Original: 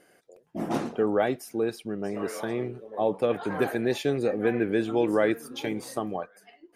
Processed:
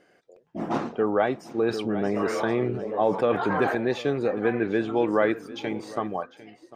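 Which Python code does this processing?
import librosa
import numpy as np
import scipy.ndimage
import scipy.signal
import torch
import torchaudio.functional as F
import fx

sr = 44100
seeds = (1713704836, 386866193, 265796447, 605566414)

p1 = scipy.signal.lfilter(np.full(4, 1.0 / 4), 1.0, x)
p2 = p1 + fx.echo_single(p1, sr, ms=751, db=-17.0, dry=0)
p3 = fx.dynamic_eq(p2, sr, hz=1100.0, q=1.4, threshold_db=-41.0, ratio=4.0, max_db=6)
y = fx.env_flatten(p3, sr, amount_pct=50, at=(1.58, 3.75))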